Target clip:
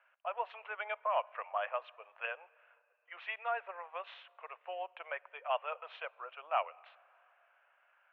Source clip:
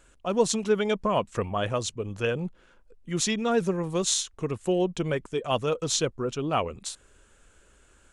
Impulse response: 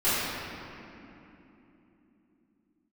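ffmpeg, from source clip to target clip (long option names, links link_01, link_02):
-filter_complex "[0:a]asuperpass=centerf=1300:order=12:qfactor=0.61,asplit=2[link_01][link_02];[1:a]atrim=start_sample=2205[link_03];[link_02][link_03]afir=irnorm=-1:irlink=0,volume=-38dB[link_04];[link_01][link_04]amix=inputs=2:normalize=0,volume=-5dB"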